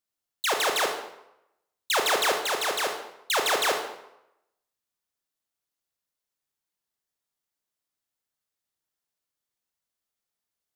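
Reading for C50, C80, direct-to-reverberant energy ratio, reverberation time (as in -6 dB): 5.5 dB, 8.5 dB, 3.5 dB, 0.85 s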